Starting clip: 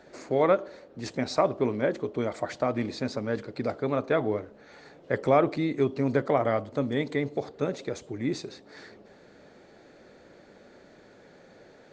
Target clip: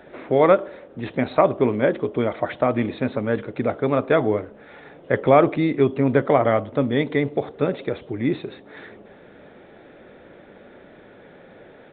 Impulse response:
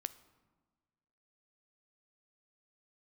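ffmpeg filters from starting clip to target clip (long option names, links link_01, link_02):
-af "aresample=8000,aresample=44100,volume=7dB"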